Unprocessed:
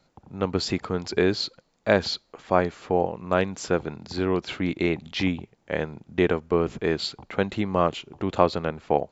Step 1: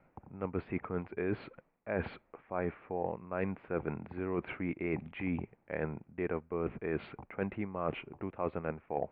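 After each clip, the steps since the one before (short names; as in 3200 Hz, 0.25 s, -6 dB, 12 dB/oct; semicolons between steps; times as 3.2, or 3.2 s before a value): elliptic low-pass 2400 Hz, stop band 60 dB; reverse; compressor 10:1, threshold -31 dBFS, peak gain reduction 19 dB; reverse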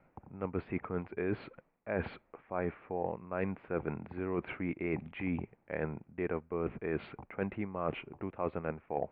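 nothing audible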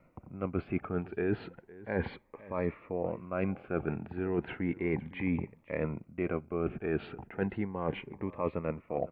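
echo 0.509 s -19.5 dB; cascading phaser rising 0.34 Hz; gain +4 dB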